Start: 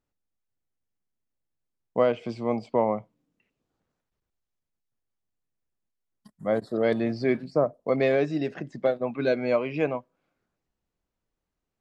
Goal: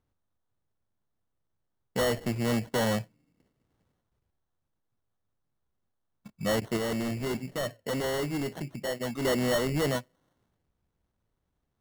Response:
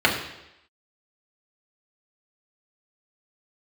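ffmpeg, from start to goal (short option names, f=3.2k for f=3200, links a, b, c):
-filter_complex "[0:a]equalizer=f=92:w=0.75:g=8.5,acrusher=samples=18:mix=1:aa=0.000001,asoftclip=type=hard:threshold=-25.5dB,asettb=1/sr,asplit=3[a][b][c];[a]atrim=end=6.774[d];[b]atrim=start=6.77:end=9.25,asetpts=PTS-STARTPTS,afade=t=in:d=0.004:c=qsin,afade=t=out:st=2.476:d=0.004:c=qsin,flanger=delay=2.5:depth=2.4:regen=-88:speed=1.4:shape=triangular[e];[c]atrim=start=9.246[f];[d][e]acrossfade=d=0.004:c1=hsin:c2=qsin[g];[g][f]acrossfade=d=0.004:c1=qsin:c2=hsin,volume=2dB"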